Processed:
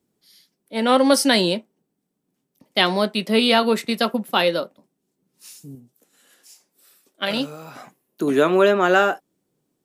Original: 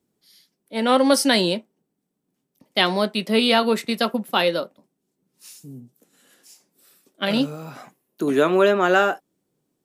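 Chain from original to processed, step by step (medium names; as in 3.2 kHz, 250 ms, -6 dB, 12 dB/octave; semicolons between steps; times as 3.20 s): 5.75–7.75 s: peaking EQ 150 Hz -7.5 dB 2.8 oct; trim +1 dB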